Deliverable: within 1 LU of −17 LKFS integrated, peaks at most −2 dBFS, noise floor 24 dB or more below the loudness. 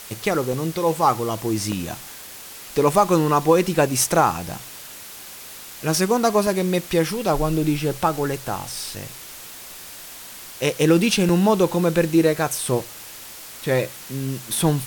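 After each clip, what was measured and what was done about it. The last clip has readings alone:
number of dropouts 6; longest dropout 2.0 ms; background noise floor −39 dBFS; target noise floor −45 dBFS; integrated loudness −21.0 LKFS; sample peak −4.0 dBFS; target loudness −17.0 LKFS
→ repair the gap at 0:00.53/0:01.72/0:04.38/0:06.47/0:08.75/0:11.29, 2 ms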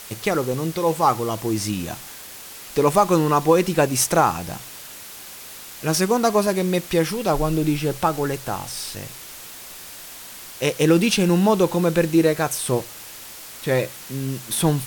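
number of dropouts 0; background noise floor −39 dBFS; target noise floor −45 dBFS
→ broadband denoise 6 dB, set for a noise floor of −39 dBFS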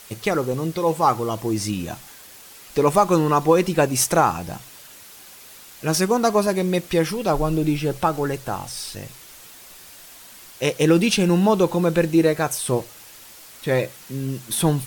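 background noise floor −44 dBFS; target noise floor −45 dBFS
→ broadband denoise 6 dB, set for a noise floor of −44 dBFS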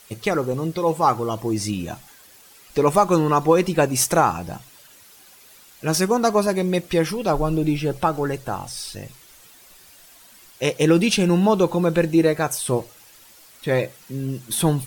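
background noise floor −49 dBFS; integrated loudness −21.0 LKFS; sample peak −4.5 dBFS; target loudness −17.0 LKFS
→ level +4 dB
brickwall limiter −2 dBFS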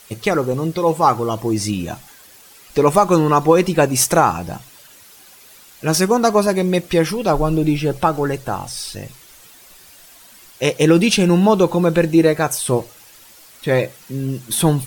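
integrated loudness −17.0 LKFS; sample peak −2.0 dBFS; background noise floor −45 dBFS

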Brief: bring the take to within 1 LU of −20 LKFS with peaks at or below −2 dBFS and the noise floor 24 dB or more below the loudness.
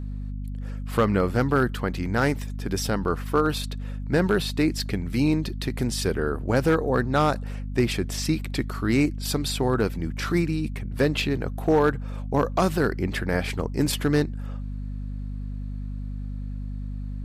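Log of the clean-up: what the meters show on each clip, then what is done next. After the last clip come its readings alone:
share of clipped samples 0.3%; peaks flattened at −12.5 dBFS; mains hum 50 Hz; hum harmonics up to 250 Hz; level of the hum −29 dBFS; integrated loudness −26.0 LKFS; sample peak −12.5 dBFS; target loudness −20.0 LKFS
→ clipped peaks rebuilt −12.5 dBFS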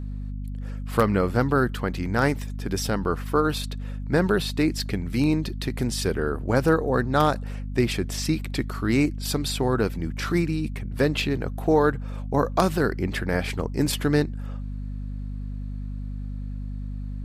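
share of clipped samples 0.0%; mains hum 50 Hz; hum harmonics up to 250 Hz; level of the hum −29 dBFS
→ mains-hum notches 50/100/150/200/250 Hz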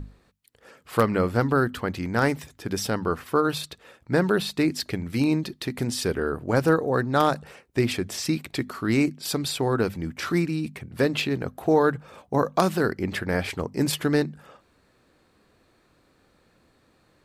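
mains hum none found; integrated loudness −25.5 LKFS; sample peak −3.5 dBFS; target loudness −20.0 LKFS
→ level +5.5 dB
brickwall limiter −2 dBFS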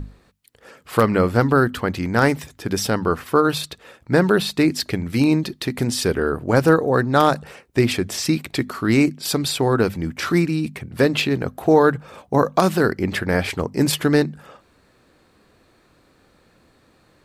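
integrated loudness −20.0 LKFS; sample peak −2.0 dBFS; background noise floor −58 dBFS

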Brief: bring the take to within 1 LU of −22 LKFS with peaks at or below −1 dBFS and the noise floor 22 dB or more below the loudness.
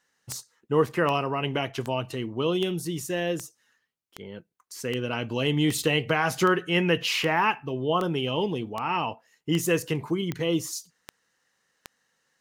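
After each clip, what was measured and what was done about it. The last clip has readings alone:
number of clicks 16; integrated loudness −26.5 LKFS; sample peak −10.5 dBFS; target loudness −22.0 LKFS
→ click removal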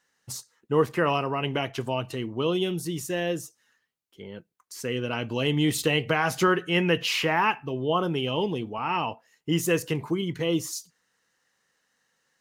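number of clicks 0; integrated loudness −26.5 LKFS; sample peak −10.5 dBFS; target loudness −22.0 LKFS
→ level +4.5 dB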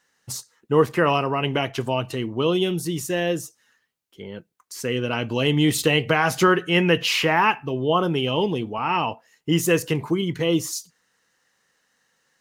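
integrated loudness −22.0 LKFS; sample peak −6.0 dBFS; background noise floor −70 dBFS

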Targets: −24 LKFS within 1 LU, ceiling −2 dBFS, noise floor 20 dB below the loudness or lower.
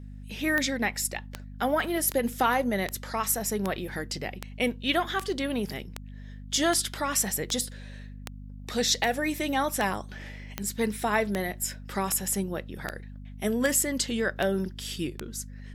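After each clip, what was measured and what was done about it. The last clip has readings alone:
number of clicks 20; mains hum 50 Hz; hum harmonics up to 250 Hz; level of the hum −40 dBFS; integrated loudness −28.5 LKFS; sample peak −10.5 dBFS; target loudness −24.0 LKFS
→ click removal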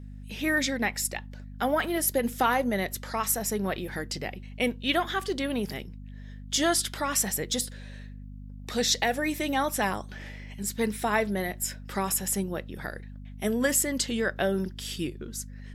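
number of clicks 0; mains hum 50 Hz; hum harmonics up to 250 Hz; level of the hum −40 dBFS
→ hum removal 50 Hz, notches 5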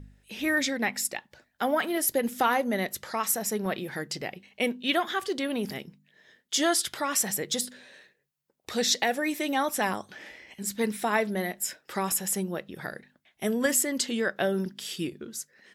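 mains hum none found; integrated loudness −28.5 LKFS; sample peak −10.5 dBFS; target loudness −24.0 LKFS
→ level +4.5 dB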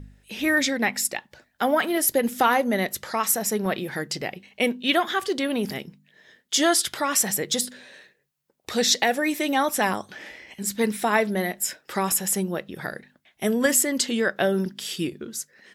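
integrated loudness −24.0 LKFS; sample peak −6.0 dBFS; background noise floor −69 dBFS

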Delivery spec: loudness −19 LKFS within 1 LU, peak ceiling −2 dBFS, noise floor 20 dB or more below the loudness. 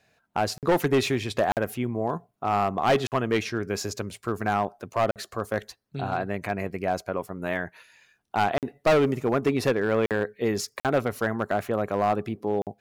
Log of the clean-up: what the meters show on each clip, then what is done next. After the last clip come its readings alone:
share of clipped samples 1.2%; peaks flattened at −16.0 dBFS; number of dropouts 8; longest dropout 48 ms; integrated loudness −27.0 LKFS; sample peak −16.0 dBFS; target loudness −19.0 LKFS
→ clipped peaks rebuilt −16 dBFS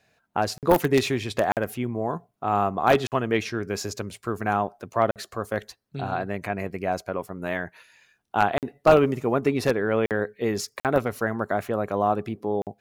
share of clipped samples 0.0%; number of dropouts 8; longest dropout 48 ms
→ repair the gap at 0:00.58/0:01.52/0:03.07/0:05.11/0:08.58/0:10.06/0:10.80/0:12.62, 48 ms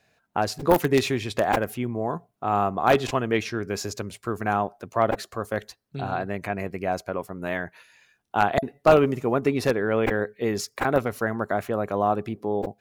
number of dropouts 0; integrated loudness −25.5 LKFS; sample peak −6.5 dBFS; target loudness −19.0 LKFS
→ level +6.5 dB
brickwall limiter −2 dBFS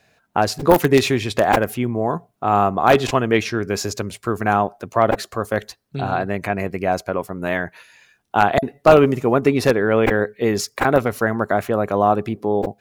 integrated loudness −19.5 LKFS; sample peak −2.0 dBFS; background noise floor −64 dBFS

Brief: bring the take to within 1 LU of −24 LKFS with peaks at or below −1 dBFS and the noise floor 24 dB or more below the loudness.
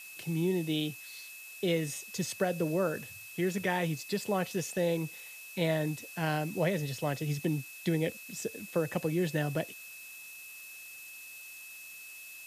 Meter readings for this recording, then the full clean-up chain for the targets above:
interfering tone 2,600 Hz; level of the tone −47 dBFS; background noise floor −48 dBFS; target noise floor −57 dBFS; integrated loudness −33.0 LKFS; sample peak −17.0 dBFS; target loudness −24.0 LKFS
→ notch filter 2,600 Hz, Q 30
noise reduction from a noise print 9 dB
level +9 dB

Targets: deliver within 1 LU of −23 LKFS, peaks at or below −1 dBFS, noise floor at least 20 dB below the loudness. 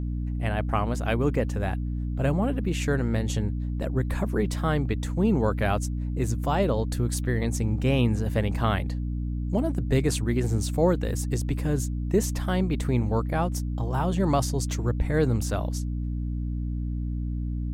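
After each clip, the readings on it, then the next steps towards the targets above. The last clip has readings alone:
mains hum 60 Hz; hum harmonics up to 300 Hz; level of the hum −26 dBFS; integrated loudness −27.0 LKFS; sample peak −11.0 dBFS; target loudness −23.0 LKFS
→ hum removal 60 Hz, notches 5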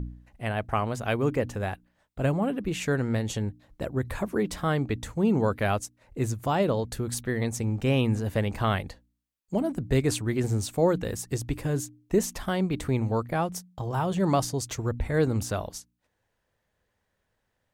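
mains hum none found; integrated loudness −28.0 LKFS; sample peak −11.5 dBFS; target loudness −23.0 LKFS
→ level +5 dB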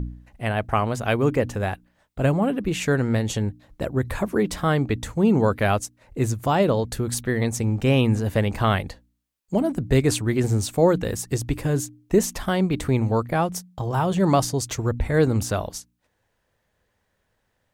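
integrated loudness −23.0 LKFS; sample peak −6.5 dBFS; background noise floor −73 dBFS

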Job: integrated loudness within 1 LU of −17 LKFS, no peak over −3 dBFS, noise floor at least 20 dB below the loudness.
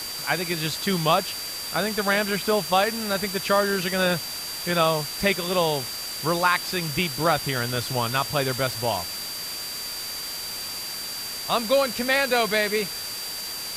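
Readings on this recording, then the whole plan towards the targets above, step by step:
interfering tone 4,700 Hz; level of the tone −33 dBFS; background noise floor −33 dBFS; target noise floor −45 dBFS; integrated loudness −24.5 LKFS; sample peak −7.0 dBFS; target loudness −17.0 LKFS
→ notch filter 4,700 Hz, Q 30
broadband denoise 12 dB, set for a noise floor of −33 dBFS
level +7.5 dB
brickwall limiter −3 dBFS

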